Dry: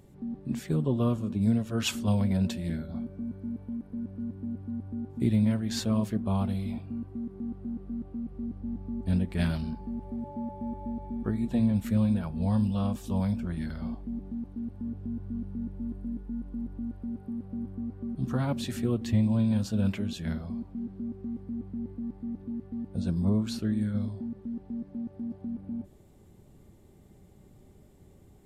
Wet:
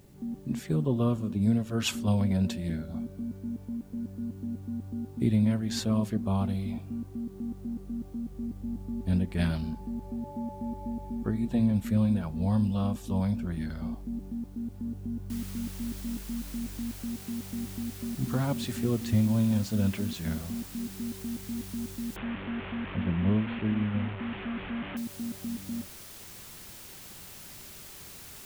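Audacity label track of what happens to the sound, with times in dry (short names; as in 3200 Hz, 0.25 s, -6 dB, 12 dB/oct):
15.300000	15.300000	noise floor step -68 dB -47 dB
22.160000	24.970000	delta modulation 16 kbps, step -32.5 dBFS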